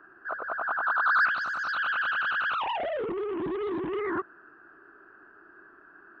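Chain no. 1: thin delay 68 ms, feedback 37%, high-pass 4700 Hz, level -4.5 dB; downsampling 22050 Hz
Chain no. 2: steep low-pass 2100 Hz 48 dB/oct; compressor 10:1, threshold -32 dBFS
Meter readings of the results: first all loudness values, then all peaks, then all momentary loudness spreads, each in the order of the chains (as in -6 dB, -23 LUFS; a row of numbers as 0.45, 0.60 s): -28.0, -34.0 LUFS; -17.5, -24.5 dBFS; 10, 20 LU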